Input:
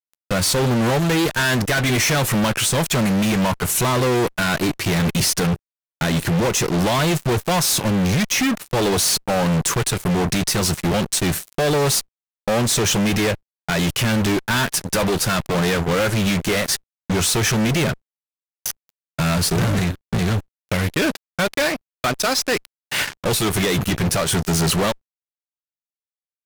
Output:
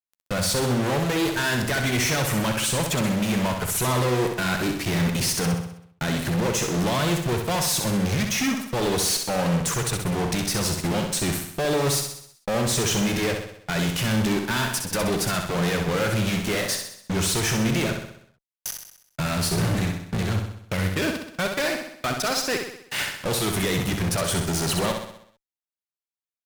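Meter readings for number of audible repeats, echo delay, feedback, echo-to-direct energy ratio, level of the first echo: 6, 64 ms, 53%, -4.0 dB, -5.5 dB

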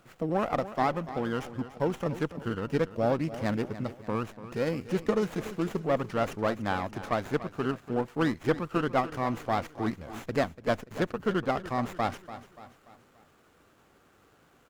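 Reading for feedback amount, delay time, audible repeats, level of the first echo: 47%, 0.29 s, 4, -14.0 dB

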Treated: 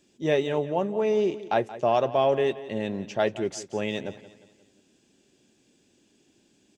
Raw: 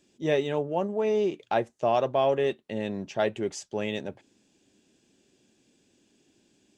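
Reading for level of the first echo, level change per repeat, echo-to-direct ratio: -16.0 dB, -7.0 dB, -15.0 dB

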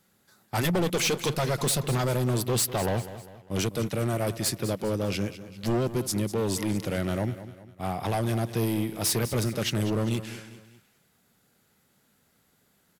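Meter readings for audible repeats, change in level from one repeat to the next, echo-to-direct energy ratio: 3, -7.0 dB, -12.5 dB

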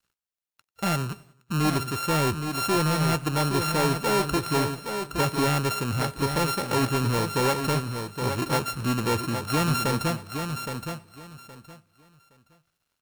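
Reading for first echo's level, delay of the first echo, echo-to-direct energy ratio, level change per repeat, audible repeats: -24.0 dB, 93 ms, -6.5 dB, no steady repeat, 7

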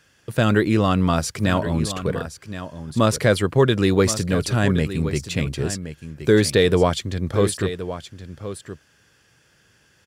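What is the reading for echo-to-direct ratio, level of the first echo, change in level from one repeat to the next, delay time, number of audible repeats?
-12.0 dB, -12.0 dB, no steady repeat, 1.071 s, 1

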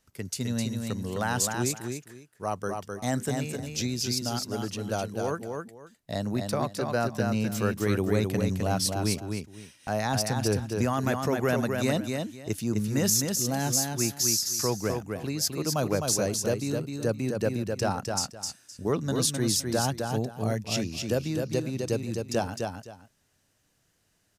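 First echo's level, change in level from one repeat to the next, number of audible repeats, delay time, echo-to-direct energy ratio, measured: -4.5 dB, -13.0 dB, 2, 0.258 s, -4.5 dB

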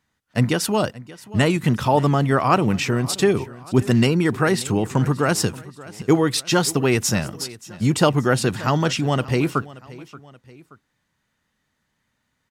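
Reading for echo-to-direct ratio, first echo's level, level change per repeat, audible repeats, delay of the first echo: -18.5 dB, -19.5 dB, -6.0 dB, 2, 0.578 s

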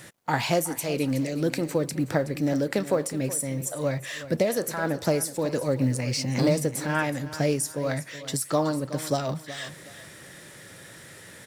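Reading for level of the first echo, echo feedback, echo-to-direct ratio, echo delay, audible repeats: -14.5 dB, 29%, -14.0 dB, 0.372 s, 2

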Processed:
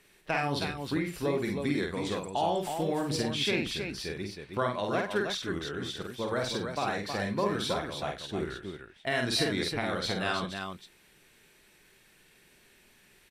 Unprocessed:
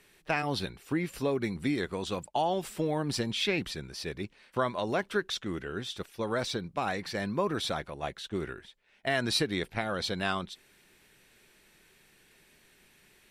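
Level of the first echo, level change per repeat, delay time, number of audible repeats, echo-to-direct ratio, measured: -3.5 dB, no steady repeat, 49 ms, 3, -1.5 dB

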